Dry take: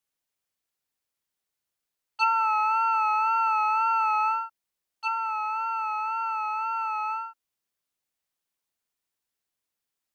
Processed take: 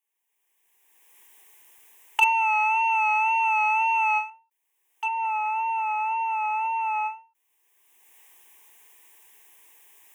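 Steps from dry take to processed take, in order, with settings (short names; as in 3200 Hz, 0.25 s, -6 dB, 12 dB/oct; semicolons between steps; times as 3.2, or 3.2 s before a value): recorder AGC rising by 25 dB/s; 2.21–4.3 bell 4600 Hz +14 dB 1.9 oct; hard clip -10.5 dBFS, distortion -29 dB; HPF 440 Hz 12 dB/oct; fixed phaser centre 910 Hz, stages 8; ending taper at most 170 dB/s; gain +2.5 dB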